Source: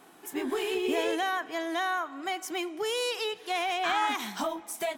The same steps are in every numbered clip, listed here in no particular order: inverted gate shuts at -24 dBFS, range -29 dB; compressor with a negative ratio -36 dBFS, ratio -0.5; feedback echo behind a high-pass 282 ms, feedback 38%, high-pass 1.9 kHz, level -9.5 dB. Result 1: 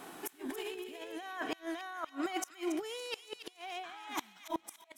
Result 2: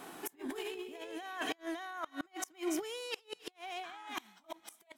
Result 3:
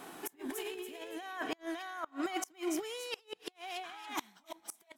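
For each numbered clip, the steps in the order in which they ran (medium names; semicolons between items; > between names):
compressor with a negative ratio > inverted gate > feedback echo behind a high-pass; feedback echo behind a high-pass > compressor with a negative ratio > inverted gate; compressor with a negative ratio > feedback echo behind a high-pass > inverted gate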